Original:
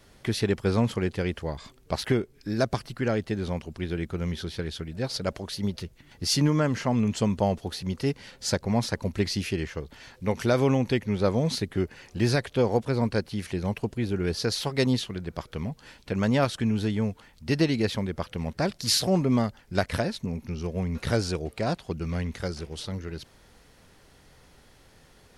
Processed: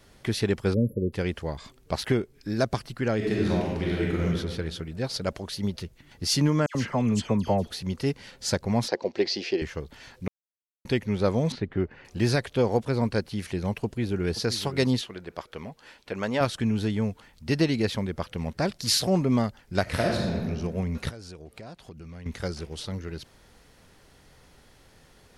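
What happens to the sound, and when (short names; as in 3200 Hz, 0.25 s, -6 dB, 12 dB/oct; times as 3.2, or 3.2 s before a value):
0.74–1.13 spectral delete 600–11000 Hz
3.16–4.24 reverb throw, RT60 1.4 s, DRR -4.5 dB
6.66–7.71 dispersion lows, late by 89 ms, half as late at 2100 Hz
8.88–9.62 speaker cabinet 340–5700 Hz, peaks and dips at 360 Hz +9 dB, 510 Hz +7 dB, 750 Hz +7 dB, 1300 Hz -6 dB, 4800 Hz +5 dB
10.28–10.85 mute
11.52–12.05 LPF 2200 Hz
13.84–14.38 echo throw 0.52 s, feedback 10%, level -13.5 dB
15.01–16.41 tone controls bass -12 dB, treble -4 dB
19.82–20.43 reverb throw, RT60 1.5 s, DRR -2 dB
21.09–22.26 compressor 5:1, threshold -41 dBFS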